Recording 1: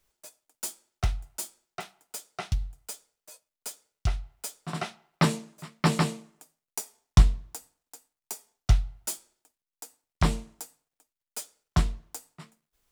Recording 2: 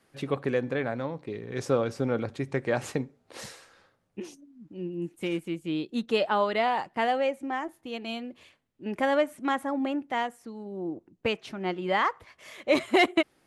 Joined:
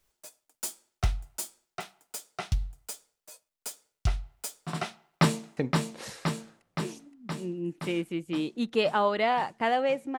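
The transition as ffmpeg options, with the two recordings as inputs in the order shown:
-filter_complex "[0:a]apad=whole_dur=10.18,atrim=end=10.18,atrim=end=5.572[s0];[1:a]atrim=start=2.928:end=7.54[s1];[s0][s1]acrossfade=d=0.004:c1=hsin:c2=hsin,asplit=2[s2][s3];[s3]afade=t=in:st=4.91:d=0.01,afade=t=out:st=5.57:d=0.01,aecho=0:1:520|1040|1560|2080|2600|3120|3640|4160|4680|5200|5720|6240:0.630957|0.44167|0.309169|0.216418|0.151493|0.106045|0.0742315|0.0519621|0.0363734|0.0254614|0.017823|0.0124761[s4];[s2][s4]amix=inputs=2:normalize=0"

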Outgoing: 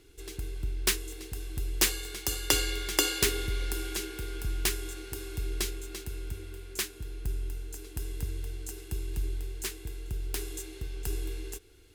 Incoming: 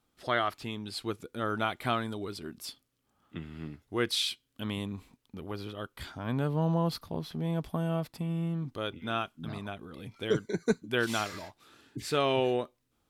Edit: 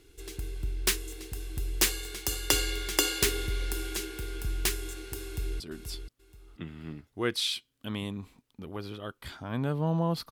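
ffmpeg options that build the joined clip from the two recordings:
-filter_complex "[0:a]apad=whole_dur=10.31,atrim=end=10.31,atrim=end=5.602[s0];[1:a]atrim=start=2.348:end=7.06[s1];[s0][s1]acrossfade=d=0.004:c1=hsin:c2=hsin,asplit=2[s2][s3];[s3]afade=t=in:st=5.23:d=0.01,afade=t=out:st=5.6:d=0.01,aecho=0:1:480|960|1440:0.398107|0.0995268|0.0248817[s4];[s2][s4]amix=inputs=2:normalize=0"

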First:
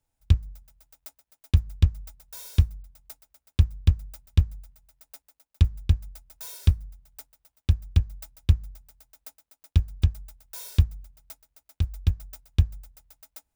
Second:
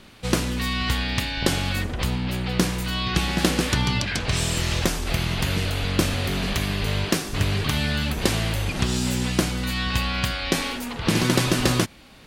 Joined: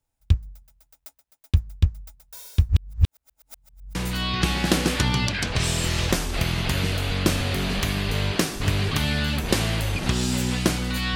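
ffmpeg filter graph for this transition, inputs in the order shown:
-filter_complex "[0:a]apad=whole_dur=11.15,atrim=end=11.15,asplit=2[s0][s1];[s0]atrim=end=2.692[s2];[s1]atrim=start=2.688:end=3.952,asetpts=PTS-STARTPTS,areverse[s3];[1:a]atrim=start=2.678:end=9.88[s4];[s2][s3]acrossfade=d=0.004:c1=hsin:c2=hsin[s5];[s5][s4]acrossfade=d=0.004:c1=hsin:c2=hsin"

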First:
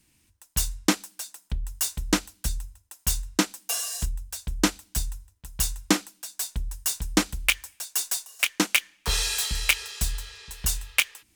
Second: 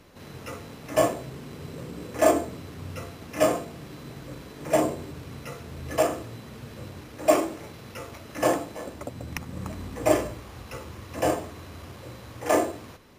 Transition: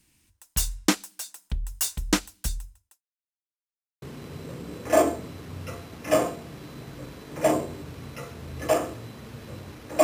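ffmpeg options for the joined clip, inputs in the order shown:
-filter_complex "[0:a]apad=whole_dur=10.03,atrim=end=10.03,asplit=2[s0][s1];[s0]atrim=end=3.02,asetpts=PTS-STARTPTS,afade=t=out:st=2.23:d=0.79:c=qsin[s2];[s1]atrim=start=3.02:end=4.02,asetpts=PTS-STARTPTS,volume=0[s3];[1:a]atrim=start=1.31:end=7.32,asetpts=PTS-STARTPTS,afade=t=in:d=0.004:c=hsin[s4];[s2][s3][s4]concat=n=3:v=0:a=1"

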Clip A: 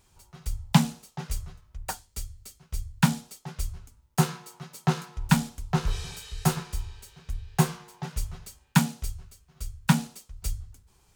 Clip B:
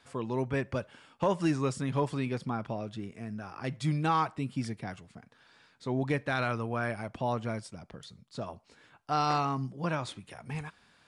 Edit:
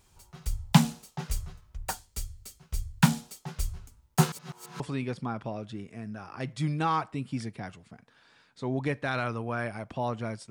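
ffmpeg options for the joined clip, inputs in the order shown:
-filter_complex "[0:a]apad=whole_dur=10.5,atrim=end=10.5,asplit=2[s0][s1];[s0]atrim=end=4.322[s2];[s1]atrim=start=4.318:end=4.802,asetpts=PTS-STARTPTS,areverse[s3];[1:a]atrim=start=2.038:end=7.74[s4];[s2][s3]acrossfade=d=0.004:c1=hsin:c2=hsin[s5];[s5][s4]acrossfade=d=0.004:c1=hsin:c2=hsin"

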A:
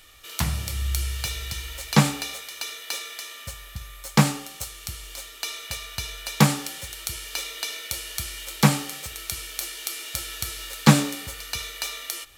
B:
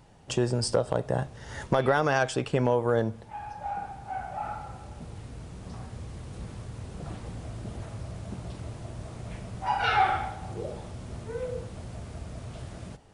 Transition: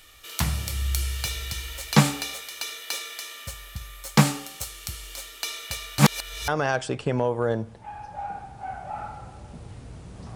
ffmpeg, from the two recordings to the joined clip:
-filter_complex "[0:a]apad=whole_dur=10.35,atrim=end=10.35,asplit=2[s0][s1];[s0]atrim=end=5.992[s2];[s1]atrim=start=5.988:end=6.482,asetpts=PTS-STARTPTS,areverse[s3];[1:a]atrim=start=1.948:end=5.82[s4];[s2][s3]acrossfade=d=0.004:c1=hsin:c2=hsin[s5];[s5][s4]acrossfade=d=0.004:c1=hsin:c2=hsin"

